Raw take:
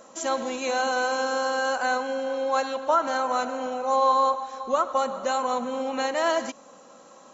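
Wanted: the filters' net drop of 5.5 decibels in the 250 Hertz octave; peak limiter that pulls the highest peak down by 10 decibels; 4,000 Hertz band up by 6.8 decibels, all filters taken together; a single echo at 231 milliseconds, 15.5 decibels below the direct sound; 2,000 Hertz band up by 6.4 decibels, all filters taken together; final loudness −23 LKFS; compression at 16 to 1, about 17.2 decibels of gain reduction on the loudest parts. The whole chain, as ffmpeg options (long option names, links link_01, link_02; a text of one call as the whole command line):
ffmpeg -i in.wav -af "equalizer=frequency=250:width_type=o:gain=-6,equalizer=frequency=2000:width_type=o:gain=8.5,equalizer=frequency=4000:width_type=o:gain=5.5,acompressor=threshold=-32dB:ratio=16,alimiter=level_in=8.5dB:limit=-24dB:level=0:latency=1,volume=-8.5dB,aecho=1:1:231:0.168,volume=17.5dB" out.wav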